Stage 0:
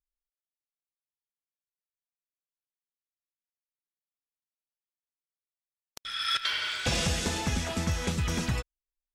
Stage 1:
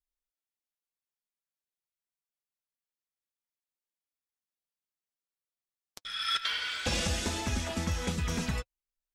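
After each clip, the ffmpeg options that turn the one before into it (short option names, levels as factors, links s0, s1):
-af "flanger=delay=3:depth=2.6:regen=-43:speed=0.27:shape=triangular,volume=1.19"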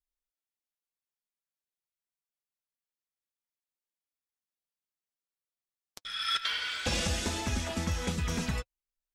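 -af anull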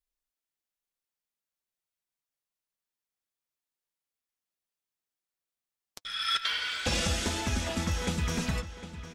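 -filter_complex "[0:a]asplit=2[s0][s1];[s1]adelay=756,lowpass=f=4900:p=1,volume=0.237,asplit=2[s2][s3];[s3]adelay=756,lowpass=f=4900:p=1,volume=0.41,asplit=2[s4][s5];[s5]adelay=756,lowpass=f=4900:p=1,volume=0.41,asplit=2[s6][s7];[s7]adelay=756,lowpass=f=4900:p=1,volume=0.41[s8];[s0][s2][s4][s6][s8]amix=inputs=5:normalize=0,volume=1.19"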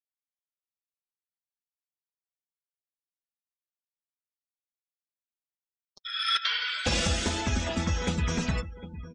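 -af "afftdn=nr=34:nf=-43,volume=1.33"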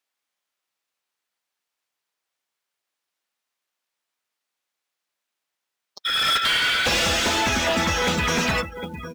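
-filter_complex "[0:a]asplit=2[s0][s1];[s1]highpass=f=720:p=1,volume=17.8,asoftclip=type=tanh:threshold=0.251[s2];[s0][s2]amix=inputs=2:normalize=0,lowpass=f=3500:p=1,volume=0.501,acrusher=bits=6:mode=log:mix=0:aa=0.000001"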